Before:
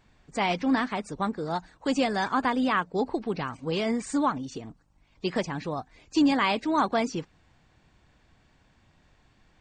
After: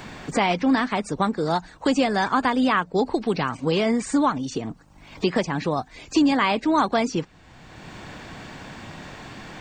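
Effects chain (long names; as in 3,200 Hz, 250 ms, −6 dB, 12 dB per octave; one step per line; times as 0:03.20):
multiband upward and downward compressor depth 70%
level +5 dB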